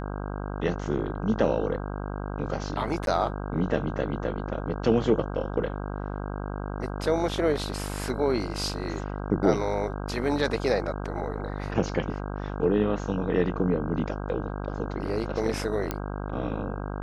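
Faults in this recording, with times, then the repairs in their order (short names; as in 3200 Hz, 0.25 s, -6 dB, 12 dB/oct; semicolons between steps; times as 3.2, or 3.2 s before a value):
buzz 50 Hz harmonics 32 -33 dBFS
3.06–3.07 gap 12 ms
15.91 pop -13 dBFS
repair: de-click; de-hum 50 Hz, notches 32; interpolate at 3.06, 12 ms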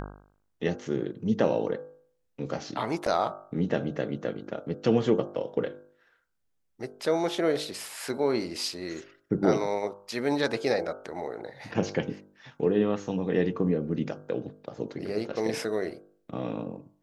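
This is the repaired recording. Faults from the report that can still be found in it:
none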